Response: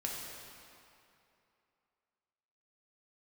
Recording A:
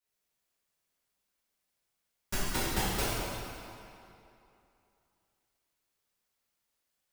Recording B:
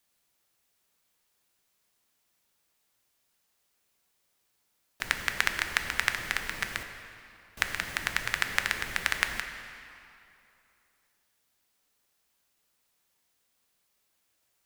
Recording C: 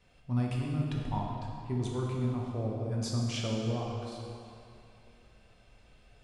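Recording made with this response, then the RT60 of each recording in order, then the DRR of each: C; 2.8 s, 2.7 s, 2.8 s; -12.0 dB, 5.5 dB, -3.0 dB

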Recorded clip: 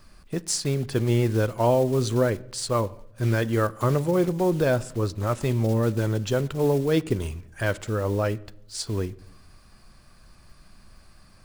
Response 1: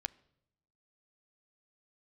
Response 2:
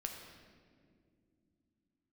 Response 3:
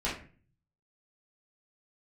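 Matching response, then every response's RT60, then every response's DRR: 1; 0.80 s, 2.1 s, 0.40 s; 15.0 dB, 2.0 dB, -9.0 dB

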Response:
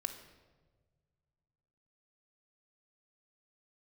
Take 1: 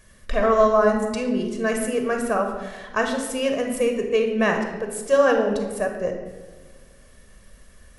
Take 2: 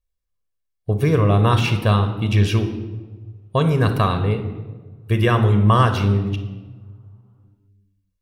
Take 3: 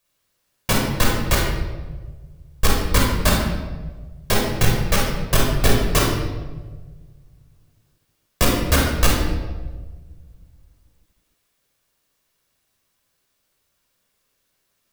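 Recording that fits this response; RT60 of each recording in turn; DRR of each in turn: 2; 1.4 s, 1.5 s, 1.4 s; 3.5 dB, 7.5 dB, -2.5 dB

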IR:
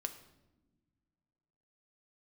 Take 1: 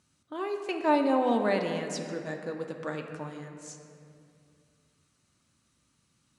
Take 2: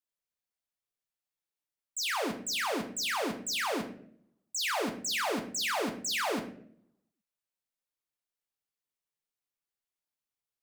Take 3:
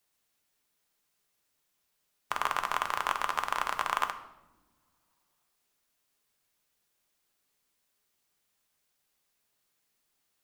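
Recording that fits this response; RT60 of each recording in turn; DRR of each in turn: 3; 2.5 s, 0.65 s, no single decay rate; 3.5 dB, 3.5 dB, 6.5 dB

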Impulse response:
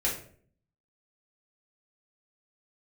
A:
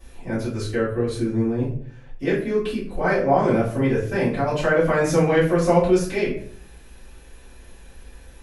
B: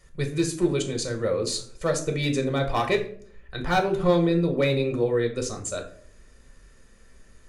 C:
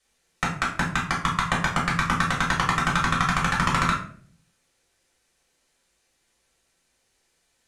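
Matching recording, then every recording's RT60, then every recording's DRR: C; 0.55 s, 0.55 s, 0.55 s; -13.0 dB, 3.0 dB, -5.0 dB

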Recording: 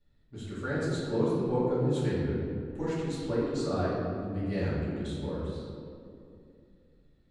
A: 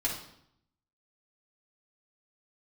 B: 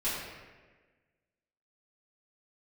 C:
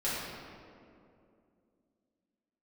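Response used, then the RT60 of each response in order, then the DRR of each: C; 0.70 s, 1.4 s, 2.5 s; -5.0 dB, -12.0 dB, -11.5 dB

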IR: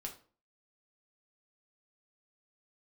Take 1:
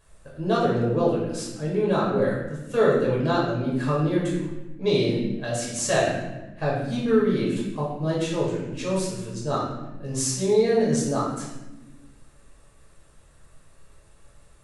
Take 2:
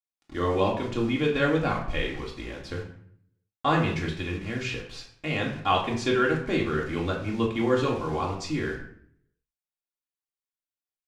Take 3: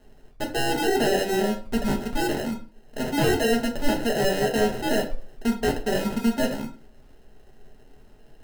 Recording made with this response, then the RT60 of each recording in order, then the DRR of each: 3; 1.1 s, 0.60 s, 0.40 s; -6.0 dB, -2.5 dB, 0.0 dB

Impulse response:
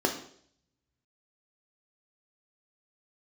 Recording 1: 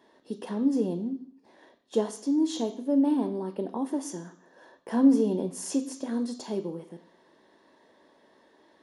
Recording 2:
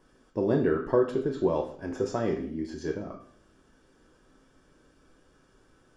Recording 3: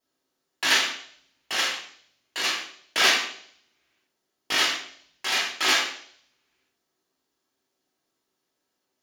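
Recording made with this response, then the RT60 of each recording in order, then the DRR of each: 2; 0.60 s, 0.60 s, 0.60 s; 8.0 dB, 2.5 dB, -5.5 dB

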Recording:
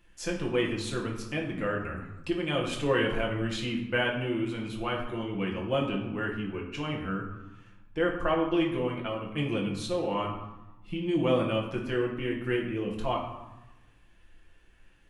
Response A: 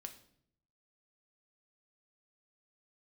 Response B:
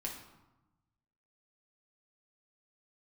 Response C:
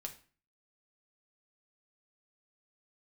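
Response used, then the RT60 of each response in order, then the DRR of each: B; 0.65 s, 1.0 s, 0.40 s; 5.5 dB, -2.0 dB, 2.5 dB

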